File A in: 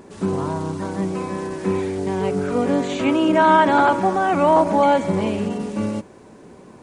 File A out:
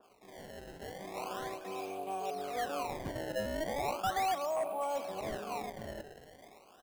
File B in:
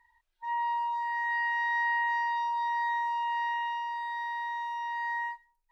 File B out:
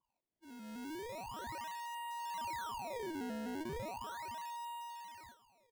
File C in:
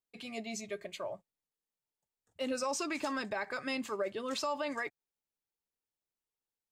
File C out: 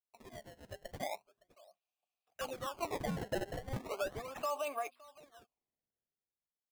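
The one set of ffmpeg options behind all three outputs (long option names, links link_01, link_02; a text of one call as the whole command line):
ffmpeg -i in.wav -filter_complex "[0:a]bandreject=frequency=124.4:width_type=h:width=4,bandreject=frequency=248.8:width_type=h:width=4,aexciter=amount=5.1:drive=3.2:freq=2500,areverse,acompressor=threshold=-30dB:ratio=16,areverse,asubboost=boost=4:cutoff=62,acrossover=split=320|3500[link_01][link_02][link_03];[link_02]acrusher=bits=6:mode=log:mix=0:aa=0.000001[link_04];[link_01][link_04][link_03]amix=inputs=3:normalize=0,asplit=3[link_05][link_06][link_07];[link_05]bandpass=frequency=730:width_type=q:width=8,volume=0dB[link_08];[link_06]bandpass=frequency=1090:width_type=q:width=8,volume=-6dB[link_09];[link_07]bandpass=frequency=2440:width_type=q:width=8,volume=-9dB[link_10];[link_08][link_09][link_10]amix=inputs=3:normalize=0,dynaudnorm=framelen=110:gausssize=17:maxgain=13dB,asoftclip=type=hard:threshold=-26dB,aecho=1:1:565:0.0841,aresample=11025,aresample=44100,acrusher=samples=21:mix=1:aa=0.000001:lfo=1:lforange=33.6:lforate=0.37,adynamicequalizer=threshold=0.00282:dfrequency=2100:dqfactor=0.7:tfrequency=2100:tqfactor=0.7:attack=5:release=100:ratio=0.375:range=2.5:mode=cutabove:tftype=highshelf,volume=-2.5dB" out.wav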